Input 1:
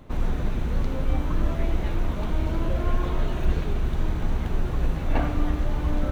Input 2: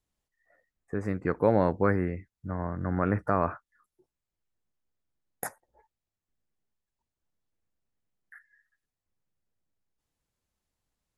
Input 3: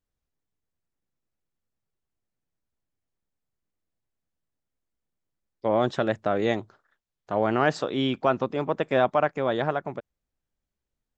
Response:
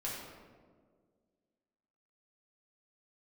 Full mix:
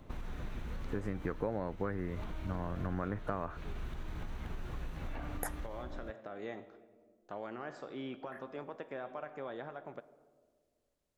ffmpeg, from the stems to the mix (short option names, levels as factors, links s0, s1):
-filter_complex "[0:a]alimiter=limit=0.141:level=0:latency=1:release=156,volume=0.473[s0];[1:a]volume=0.794[s1];[2:a]agate=range=0.0224:threshold=0.00224:ratio=3:detection=peak,lowshelf=f=190:g=-10.5,volume=0.422,asplit=2[s2][s3];[s3]volume=0.0794[s4];[s0][s2]amix=inputs=2:normalize=0,acrossover=split=1100|2300[s5][s6][s7];[s5]acompressor=threshold=0.0141:ratio=4[s8];[s6]acompressor=threshold=0.00316:ratio=4[s9];[s7]acompressor=threshold=0.001:ratio=4[s10];[s8][s9][s10]amix=inputs=3:normalize=0,alimiter=level_in=2.24:limit=0.0631:level=0:latency=1:release=435,volume=0.447,volume=1[s11];[3:a]atrim=start_sample=2205[s12];[s4][s12]afir=irnorm=-1:irlink=0[s13];[s1][s11][s13]amix=inputs=3:normalize=0,acompressor=threshold=0.0251:ratio=6"